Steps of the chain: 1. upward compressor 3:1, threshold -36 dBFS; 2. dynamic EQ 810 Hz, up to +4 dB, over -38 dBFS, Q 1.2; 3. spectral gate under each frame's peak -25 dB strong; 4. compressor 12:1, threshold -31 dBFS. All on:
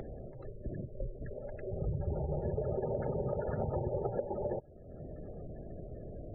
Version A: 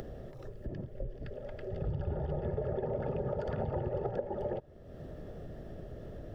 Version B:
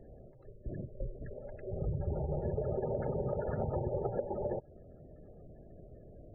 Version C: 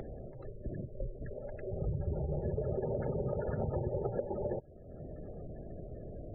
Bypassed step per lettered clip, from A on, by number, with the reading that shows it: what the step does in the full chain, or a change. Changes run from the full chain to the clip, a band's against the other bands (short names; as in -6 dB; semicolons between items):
3, 2 kHz band +4.5 dB; 1, momentary loudness spread change +8 LU; 2, 1 kHz band -3.0 dB